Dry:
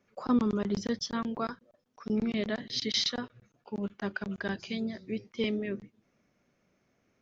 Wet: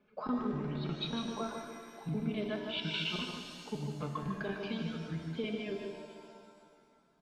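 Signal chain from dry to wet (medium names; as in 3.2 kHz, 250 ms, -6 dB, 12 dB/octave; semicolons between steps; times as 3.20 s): pitch shift switched off and on -5.5 st, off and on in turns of 535 ms; low-pass 3.8 kHz 24 dB/octave; band-stop 1.9 kHz, Q 5.7; reverb removal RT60 1.3 s; hum notches 60/120 Hz; comb 4.7 ms, depth 54%; compression 3:1, threshold -36 dBFS, peak gain reduction 13 dB; delay 151 ms -6 dB; pitch-shifted reverb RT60 2.2 s, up +7 st, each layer -8 dB, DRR 4 dB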